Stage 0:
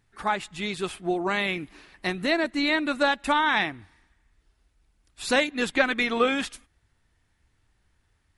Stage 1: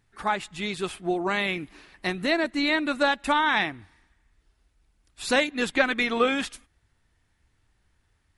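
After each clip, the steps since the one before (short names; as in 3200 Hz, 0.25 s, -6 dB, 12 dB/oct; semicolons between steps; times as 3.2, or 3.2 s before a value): nothing audible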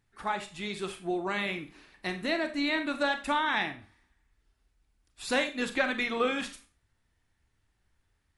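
Schroeder reverb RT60 0.33 s, combs from 28 ms, DRR 8 dB; gain -6 dB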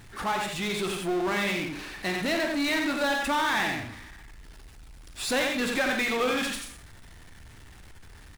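echo 89 ms -6.5 dB; power-law curve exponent 0.5; gain -4 dB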